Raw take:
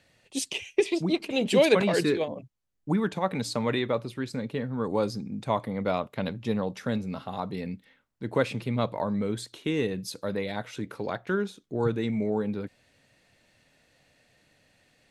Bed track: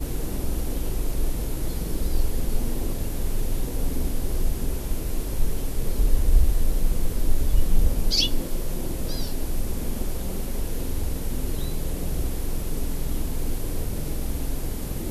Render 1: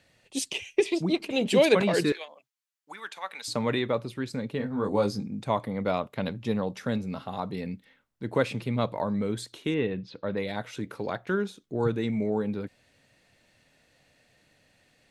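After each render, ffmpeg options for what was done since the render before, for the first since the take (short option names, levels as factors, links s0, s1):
-filter_complex "[0:a]asettb=1/sr,asplit=3[s0][s1][s2];[s0]atrim=end=2.124[s3];[s1]atrim=start=2.12:end=3.48,asetpts=PTS-STARTPTS,afade=t=in:d=0.004:c=qsin,afade=t=out:st=1.356:d=0.004:c=qsin,highpass=1300[s4];[s2]atrim=start=3.476[s5];[s3][s4]acrossfade=d=0.004:c1=hsin:c2=qsin[s6];[s6][s5]acrossfade=d=0.004:c1=qsin:c2=hsin,asettb=1/sr,asplit=3[s7][s8][s9];[s7]atrim=end=4.584[s10];[s8]atrim=start=4.58:end=5.26,asetpts=PTS-STARTPTS,afade=t=in:d=0.004:c=qsin,afade=t=out:st=0.676:d=0.004:c=qsin,asplit=2[s11][s12];[s12]adelay=20,volume=0.631[s13];[s11][s13]amix=inputs=2:normalize=0,atrim=end_sample=29988[s14];[s9]atrim=start=5.256[s15];[s10][s14]acrossfade=d=0.004:c1=hsin:c2=qsin[s16];[s16][s15]acrossfade=d=0.004:c1=qsin:c2=hsin,asettb=1/sr,asplit=3[s17][s18][s19];[s17]atrim=end=9.744[s20];[s18]atrim=start=9.74:end=10.37,asetpts=PTS-STARTPTS,afade=t=in:d=0.004:c=qsin,afade=t=out:st=0.626:d=0.004:c=qsin,lowpass=f=3400:w=0.5412,lowpass=f=3400:w=1.3066[s21];[s19]atrim=start=10.366[s22];[s20][s21]acrossfade=d=0.004:c1=hsin:c2=qsin[s23];[s23][s22]acrossfade=d=0.004:c1=qsin:c2=hsin"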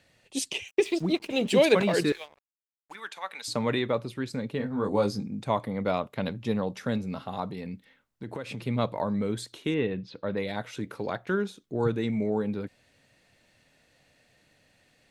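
-filter_complex "[0:a]asettb=1/sr,asplit=3[s0][s1][s2];[s0]atrim=end=0.684[s3];[s1]atrim=start=0.68:end=2.95,asetpts=PTS-STARTPTS,afade=t=in:d=0.004:c=qsin,afade=t=out:st=2.266:d=0.004:c=qsin,aeval=exprs='sgn(val(0))*max(abs(val(0))-0.00316,0)':c=same[s4];[s2]atrim=start=2.946[s5];[s3][s4]acrossfade=d=0.004:c1=hsin:c2=qsin[s6];[s6][s5]acrossfade=d=0.004:c1=qsin:c2=hsin,asettb=1/sr,asplit=3[s7][s8][s9];[s7]atrim=end=7.474[s10];[s8]atrim=start=7.47:end=8.65,asetpts=PTS-STARTPTS,afade=t=in:d=0.004:c=qsin,afade=t=out:st=1.176:d=0.004:c=qsin,acompressor=threshold=0.0251:ratio=6:attack=3.2:release=140:knee=1:detection=peak[s11];[s9]atrim=start=8.646[s12];[s10][s11]acrossfade=d=0.004:c1=hsin:c2=qsin[s13];[s13][s12]acrossfade=d=0.004:c1=qsin:c2=hsin"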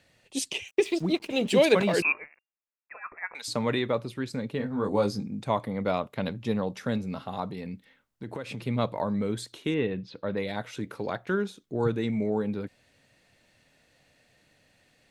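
-filter_complex "[0:a]asettb=1/sr,asplit=3[s0][s1][s2];[s0]atrim=end=2.024[s3];[s1]atrim=start=2.02:end=3.35,asetpts=PTS-STARTPTS,afade=t=in:d=0.004:c=qsin,afade=t=out:st=1.326:d=0.004:c=qsin,lowpass=f=2400:t=q:w=0.5098,lowpass=f=2400:t=q:w=0.6013,lowpass=f=2400:t=q:w=0.9,lowpass=f=2400:t=q:w=2.563,afreqshift=-2800[s4];[s2]atrim=start=3.346[s5];[s3][s4]acrossfade=d=0.004:c1=hsin:c2=qsin[s6];[s6][s5]acrossfade=d=0.004:c1=qsin:c2=hsin"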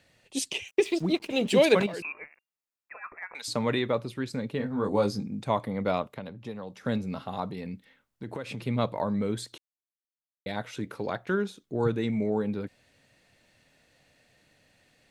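-filter_complex "[0:a]asettb=1/sr,asplit=3[s0][s1][s2];[s0]atrim=end=1.864[s3];[s1]atrim=start=1.86:end=3.32,asetpts=PTS-STARTPTS,afade=t=in:d=0.004:c=qsin,afade=t=out:st=1.456:d=0.004:c=qsin,acompressor=threshold=0.0224:ratio=6:attack=3.2:release=140:knee=1:detection=peak[s4];[s2]atrim=start=3.316[s5];[s3][s4]acrossfade=d=0.004:c1=hsin:c2=qsin[s6];[s6][s5]acrossfade=d=0.004:c1=qsin:c2=hsin,asettb=1/sr,asplit=3[s7][s8][s9];[s7]atrim=end=6.024[s10];[s8]atrim=start=6.02:end=6.85,asetpts=PTS-STARTPTS,afade=t=in:d=0.004:c=qsin,afade=t=out:st=0.826:d=0.004:c=qsin,acrossover=split=420|1400[s11][s12][s13];[s11]acompressor=threshold=0.00891:ratio=4[s14];[s12]acompressor=threshold=0.00794:ratio=4[s15];[s13]acompressor=threshold=0.00224:ratio=4[s16];[s14][s15][s16]amix=inputs=3:normalize=0[s17];[s9]atrim=start=6.846[s18];[s10][s17]acrossfade=d=0.004:c1=hsin:c2=qsin[s19];[s19][s18]acrossfade=d=0.004:c1=qsin:c2=hsin,asplit=3[s20][s21][s22];[s20]atrim=end=9.58,asetpts=PTS-STARTPTS,afade=t=out:st=9.576:d=0.004:c=hsin[s23];[s21]atrim=start=9.58:end=10.46,asetpts=PTS-STARTPTS,volume=0[s24];[s22]atrim=start=10.46,asetpts=PTS-STARTPTS,afade=t=in:d=0.004:c=hsin[s25];[s23][s24][s25]concat=n=3:v=0:a=1"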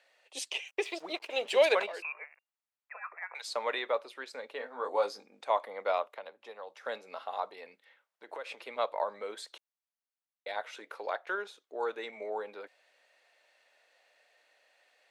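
-af "highpass=f=540:w=0.5412,highpass=f=540:w=1.3066,highshelf=f=4800:g=-10"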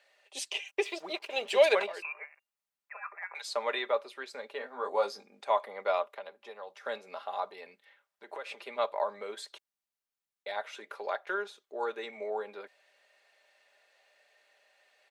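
-af "aecho=1:1:5:0.44"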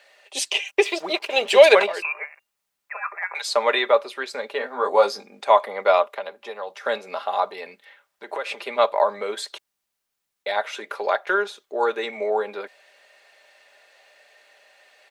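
-af "volume=3.98,alimiter=limit=0.891:level=0:latency=1"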